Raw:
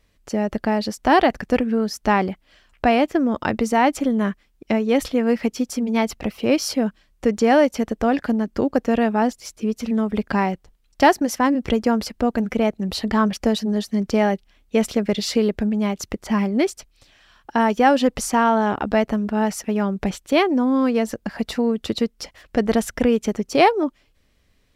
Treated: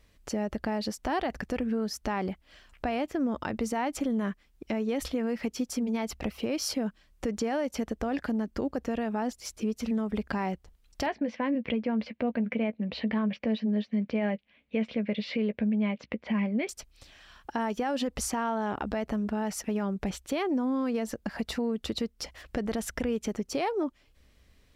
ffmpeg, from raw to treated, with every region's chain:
-filter_complex "[0:a]asettb=1/sr,asplit=3[s0][s1][s2];[s0]atrim=end=11.064[s3];[s1]atrim=start=11.06:end=16.69,asetpts=PTS-STARTPTS,afade=t=in:d=0.004:c=qsin,afade=t=out:st=5.626:d=0.004:c=qsin,highpass=170,equalizer=f=230:t=q:w=4:g=4,equalizer=f=360:t=q:w=4:g=-9,equalizer=f=520:t=q:w=4:g=4,equalizer=f=810:t=q:w=4:g=-6,equalizer=f=1300:t=q:w=4:g=-8,equalizer=f=2300:t=q:w=4:g=6,lowpass=f=3300:w=0.5412,lowpass=f=3300:w=1.3066,asplit=2[s4][s5];[s5]adelay=14,volume=0.237[s6];[s4][s6]amix=inputs=2:normalize=0,atrim=end_sample=248283[s7];[s2]atrim=start=16.686[s8];[s3][s7]acrossfade=d=0.004:c1=hsin:c2=qsin[s9];[s9][s8]acrossfade=d=0.004:c1=qsin:c2=hsin,equalizer=f=64:w=5.8:g=9,alimiter=limit=0.211:level=0:latency=1:release=52,acompressor=threshold=0.0112:ratio=1.5"

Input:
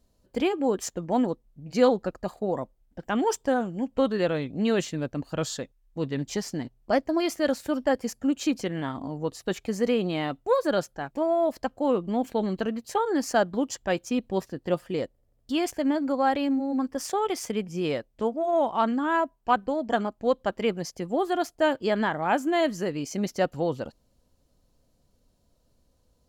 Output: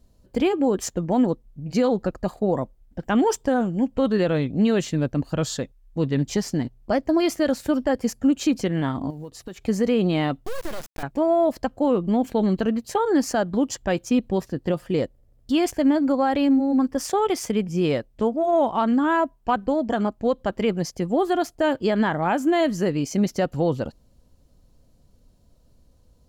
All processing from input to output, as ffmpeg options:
-filter_complex "[0:a]asettb=1/sr,asplit=3[s0][s1][s2];[s0]atrim=end=9.104[s3];[s1]atrim=start=9.1:end=9.63,asetpts=PTS-STARTPTS,afade=t=in:d=0.004:c=qsin,afade=t=out:st=0.526:d=0.004:c=qsin,acompressor=threshold=0.01:ratio=5:attack=3.2:release=140:knee=1:detection=peak,acrusher=bits=8:mode=log:mix=0:aa=0.000001[s4];[s2]atrim=start=9.626[s5];[s3][s4]acrossfade=d=0.004:c1=hsin:c2=qsin[s6];[s6][s5]acrossfade=d=0.004:c1=qsin:c2=hsin,asettb=1/sr,asplit=3[s7][s8][s9];[s7]atrim=end=10.464[s10];[s8]atrim=start=10.46:end=11.03,asetpts=PTS-STARTPTS,afade=t=in:d=0.004:c=qsin,afade=t=out:st=0.566:d=0.004:c=qsin,equalizer=f=110:t=o:w=0.42:g=7.5,acompressor=threshold=0.0398:ratio=6:attack=3.2:release=140:knee=1:detection=peak,acrusher=bits=4:dc=4:mix=0:aa=0.000001[s11];[s9]atrim=start=11.026[s12];[s10][s11]acrossfade=d=0.004:c1=hsin:c2=qsin[s13];[s13][s12]acrossfade=d=0.004:c1=qsin:c2=hsin,lowshelf=f=260:g=7.5,alimiter=limit=0.178:level=0:latency=1:release=80,volume=1.5"

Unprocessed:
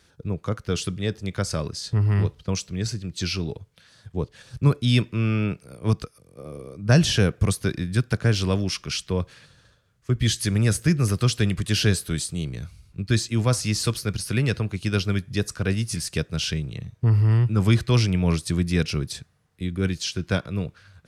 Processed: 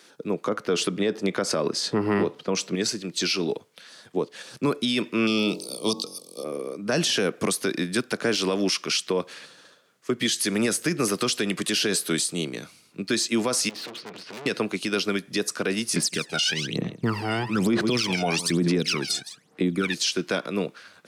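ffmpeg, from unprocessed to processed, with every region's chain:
-filter_complex "[0:a]asettb=1/sr,asplit=3[s0][s1][s2];[s0]atrim=end=0.464[s3];[s1]atrim=start=0.46:end=2.75,asetpts=PTS-STARTPTS,afade=t=in:d=0.004:c=qsin,afade=t=out:st=2.286:d=0.004:c=qsin,highshelf=f=2800:g=-11,acontrast=58[s4];[s2]atrim=start=2.746[s5];[s3][s4]acrossfade=d=0.004:c1=hsin:c2=qsin[s6];[s6][s5]acrossfade=d=0.004:c1=qsin:c2=hsin,asettb=1/sr,asplit=3[s7][s8][s9];[s7]atrim=end=5.274[s10];[s8]atrim=start=5.27:end=6.44,asetpts=PTS-STARTPTS,afade=t=in:d=0.004:c=qsin,afade=t=out:st=1.166:d=0.004:c=qsin,asuperstop=centerf=1600:order=4:qfactor=2.1,highshelf=f=2900:t=q:w=3:g=10.5,bandreject=f=45.99:t=h:w=4,bandreject=f=91.98:t=h:w=4,bandreject=f=137.97:t=h:w=4,bandreject=f=183.96:t=h:w=4,bandreject=f=229.95:t=h:w=4,bandreject=f=275.94:t=h:w=4,bandreject=f=321.93:t=h:w=4,bandreject=f=367.92:t=h:w=4,bandreject=f=413.91:t=h:w=4,bandreject=f=459.9:t=h:w=4,bandreject=f=505.89:t=h:w=4,bandreject=f=551.88:t=h:w=4,bandreject=f=597.87:t=h:w=4,bandreject=f=643.86:t=h:w=4,bandreject=f=689.85:t=h:w=4,bandreject=f=735.84:t=h:w=4,bandreject=f=781.83:t=h:w=4,bandreject=f=827.82:t=h:w=4,bandreject=f=873.81:t=h:w=4,bandreject=f=919.8:t=h:w=4,bandreject=f=965.79:t=h:w=4,bandreject=f=1011.78:t=h:w=4,bandreject=f=1057.77:t=h:w=4,bandreject=f=1103.76:t=h:w=4[s11];[s9]atrim=start=6.436[s12];[s10][s11]acrossfade=d=0.004:c1=hsin:c2=qsin[s13];[s13][s12]acrossfade=d=0.004:c1=qsin:c2=hsin,asettb=1/sr,asplit=3[s14][s15][s16];[s14]atrim=end=13.694[s17];[s15]atrim=start=13.69:end=14.46,asetpts=PTS-STARTPTS,afade=t=in:d=0.004:c=qsin,afade=t=out:st=0.766:d=0.004:c=qsin,lowpass=f=3500:w=0.5412,lowpass=f=3500:w=1.3066,aeval=exprs='(tanh(89.1*val(0)+0.4)-tanh(0.4))/89.1':c=same[s18];[s16]atrim=start=14.456[s19];[s17][s18]acrossfade=d=0.004:c1=hsin:c2=qsin[s20];[s20][s19]acrossfade=d=0.004:c1=qsin:c2=hsin,asettb=1/sr,asplit=3[s21][s22][s23];[s21]atrim=end=15.964[s24];[s22]atrim=start=15.96:end=19.94,asetpts=PTS-STARTPTS,afade=t=in:d=0.004:c=qsin,afade=t=out:st=3.976:d=0.004:c=qsin,lowpass=10000,aecho=1:1:162:0.15,atrim=end_sample=175518,aphaser=in_gain=1:out_gain=1:delay=1.4:decay=0.8:speed=1.1:type=sinusoidal[s25];[s23]atrim=start=19.936[s26];[s24][s25]acrossfade=d=0.004:c1=hsin:c2=qsin[s27];[s27][s26]acrossfade=d=0.004:c1=qsin:c2=hsin,highpass=f=240:w=0.5412,highpass=f=240:w=1.3066,equalizer=f=1600:w=6.1:g=-2,alimiter=limit=0.075:level=0:latency=1:release=100,volume=2.51"

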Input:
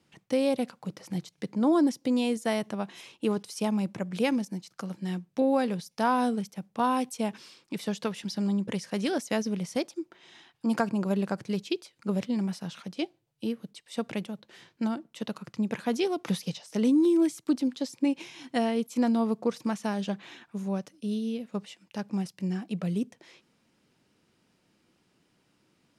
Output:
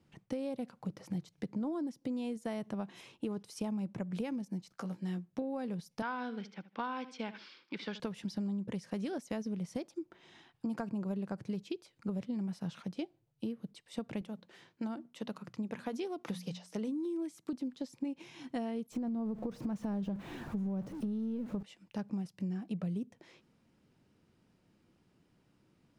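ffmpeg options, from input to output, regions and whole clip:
-filter_complex "[0:a]asettb=1/sr,asplit=3[s0][s1][s2];[s0]atrim=end=4.724[s3];[s1]atrim=start=4.72:end=5.33,asetpts=PTS-STARTPTS,afade=t=in:d=0.004:c=qsin,afade=t=out:st=0.606:d=0.004:c=qsin,lowshelf=f=170:g=-11.5,asplit=2[s4][s5];[s5]adelay=17,volume=0.422[s6];[s4][s6]amix=inputs=2:normalize=0,atrim=end_sample=26901[s7];[s2]atrim=start=5.326[s8];[s3][s7]acrossfade=d=0.004:c1=hsin:c2=qsin[s9];[s9][s8]acrossfade=d=0.004:c1=qsin:c2=hsin,asettb=1/sr,asplit=3[s10][s11][s12];[s10]atrim=end=6.024[s13];[s11]atrim=start=6.02:end=8,asetpts=PTS-STARTPTS,afade=t=in:d=0.004:c=qsin,afade=t=out:st=1.976:d=0.004:c=qsin,highpass=340,equalizer=f=440:t=q:w=4:g=-3,equalizer=f=660:t=q:w=4:g=-7,equalizer=f=1500:t=q:w=4:g=8,equalizer=f=2200:t=q:w=4:g=7,equalizer=f=3300:t=q:w=4:g=6,equalizer=f=4700:t=q:w=4:g=4,lowpass=f=5200:w=0.5412,lowpass=f=5200:w=1.3066,aecho=1:1:76|152:0.141|0.0367,atrim=end_sample=87318[s14];[s12]atrim=start=7.996[s15];[s13][s14]acrossfade=d=0.004:c1=hsin:c2=qsin[s16];[s16][s15]acrossfade=d=0.004:c1=qsin:c2=hsin,asettb=1/sr,asplit=3[s17][s18][s19];[s17]atrim=end=14.214[s20];[s18]atrim=start=14.21:end=17.53,asetpts=PTS-STARTPTS,afade=t=in:d=0.004:c=qsin,afade=t=out:st=3.316:d=0.004:c=qsin,lowshelf=f=170:g=-11,bandreject=f=60:t=h:w=6,bandreject=f=120:t=h:w=6,bandreject=f=180:t=h:w=6,bandreject=f=240:t=h:w=6[s21];[s19]atrim=start=17.526[s22];[s20][s21]acrossfade=d=0.004:c1=hsin:c2=qsin[s23];[s23][s22]acrossfade=d=0.004:c1=qsin:c2=hsin,asettb=1/sr,asplit=3[s24][s25][s26];[s24]atrim=end=18.924[s27];[s25]atrim=start=18.92:end=21.63,asetpts=PTS-STARTPTS,afade=t=in:d=0.004:c=qsin,afade=t=out:st=2.706:d=0.004:c=qsin,aeval=exprs='val(0)+0.5*0.0106*sgn(val(0))':c=same,tiltshelf=f=1100:g=6,acompressor=threshold=0.0708:ratio=6:attack=3.2:release=140:knee=1:detection=peak[s28];[s26]atrim=start=21.626[s29];[s27][s28]acrossfade=d=0.004:c1=hsin:c2=qsin[s30];[s30][s29]acrossfade=d=0.004:c1=qsin:c2=hsin,tiltshelf=f=1400:g=8,acompressor=threshold=0.0447:ratio=6,equalizer=f=410:w=0.32:g=-7.5,volume=0.891"

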